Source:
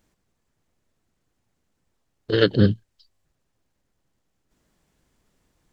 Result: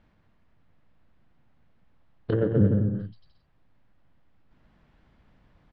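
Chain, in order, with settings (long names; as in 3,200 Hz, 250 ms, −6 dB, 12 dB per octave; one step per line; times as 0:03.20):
high-frequency loss of the air 360 metres
downward compressor 2.5 to 1, threshold −28 dBFS, peak gain reduction 11 dB
parametric band 390 Hz −7 dB 0.83 octaves
bouncing-ball delay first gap 130 ms, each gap 0.75×, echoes 5
treble cut that deepens with the level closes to 700 Hz, closed at −28.5 dBFS
level +7.5 dB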